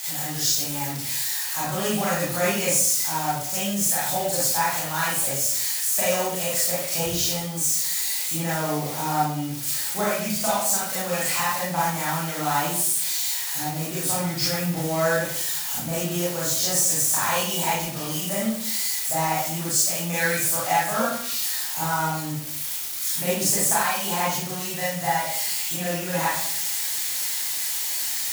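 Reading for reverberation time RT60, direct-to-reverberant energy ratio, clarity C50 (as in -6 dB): 0.60 s, -8.5 dB, -0.5 dB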